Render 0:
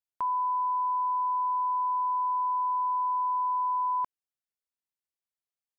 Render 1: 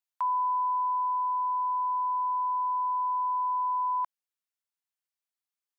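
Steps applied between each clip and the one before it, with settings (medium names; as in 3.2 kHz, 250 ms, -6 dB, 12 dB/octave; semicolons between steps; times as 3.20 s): high-pass 740 Hz 24 dB/octave; gain riding 2 s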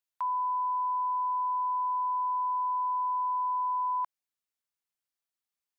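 peak limiter -26.5 dBFS, peak gain reduction 3 dB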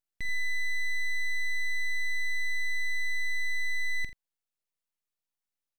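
multi-tap echo 46/83 ms -13/-14 dB; full-wave rectifier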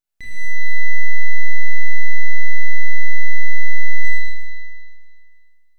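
Schroeder reverb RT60 2 s, combs from 26 ms, DRR -6 dB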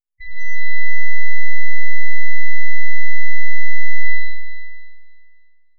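loudest bins only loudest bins 8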